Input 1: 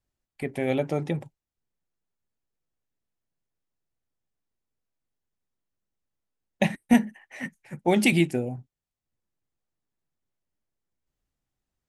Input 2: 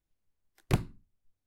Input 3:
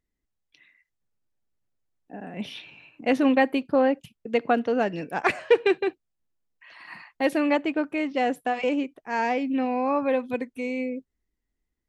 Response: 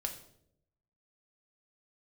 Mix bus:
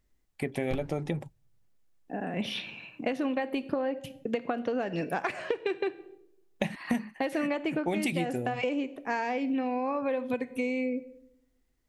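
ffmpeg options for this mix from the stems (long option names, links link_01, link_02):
-filter_complex "[0:a]volume=2dB[link_01];[1:a]bass=frequency=250:gain=9,treble=frequency=4000:gain=-5,aeval=exprs='0.422*(cos(1*acos(clip(val(0)/0.422,-1,1)))-cos(1*PI/2))+0.15*(cos(6*acos(clip(val(0)/0.422,-1,1)))-cos(6*PI/2))':channel_layout=same,volume=-12.5dB,asplit=2[link_02][link_03];[link_03]volume=-8dB[link_04];[2:a]acompressor=threshold=-23dB:ratio=6,volume=2dB,asplit=2[link_05][link_06];[link_06]volume=-7dB[link_07];[3:a]atrim=start_sample=2205[link_08];[link_04][link_07]amix=inputs=2:normalize=0[link_09];[link_09][link_08]afir=irnorm=-1:irlink=0[link_10];[link_01][link_02][link_05][link_10]amix=inputs=4:normalize=0,acompressor=threshold=-27dB:ratio=6"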